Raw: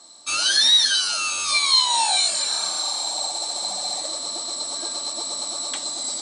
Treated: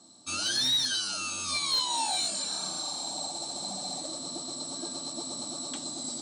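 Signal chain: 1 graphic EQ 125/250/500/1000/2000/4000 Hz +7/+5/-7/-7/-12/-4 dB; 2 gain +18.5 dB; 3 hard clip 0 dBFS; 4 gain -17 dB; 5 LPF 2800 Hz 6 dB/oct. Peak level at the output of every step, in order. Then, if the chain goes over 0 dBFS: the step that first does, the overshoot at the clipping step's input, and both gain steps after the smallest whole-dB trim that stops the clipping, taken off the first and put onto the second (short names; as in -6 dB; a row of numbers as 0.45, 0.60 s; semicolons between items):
-12.5, +6.0, 0.0, -17.0, -19.5 dBFS; step 2, 6.0 dB; step 2 +12.5 dB, step 4 -11 dB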